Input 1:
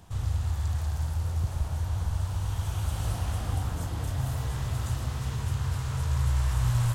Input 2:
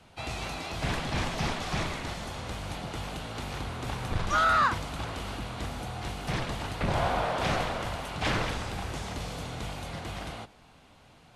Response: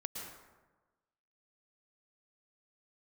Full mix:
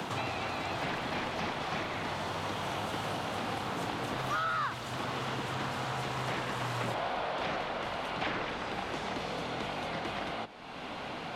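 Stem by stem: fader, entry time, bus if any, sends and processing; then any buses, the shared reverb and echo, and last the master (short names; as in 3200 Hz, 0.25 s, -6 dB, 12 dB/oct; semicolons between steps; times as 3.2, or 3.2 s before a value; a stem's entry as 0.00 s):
+2.0 dB, 0.00 s, no send, HPF 110 Hz 24 dB/oct
-2.0 dB, 0.00 s, no send, dry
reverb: off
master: three-band isolator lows -20 dB, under 190 Hz, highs -14 dB, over 4600 Hz; three-band squash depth 100%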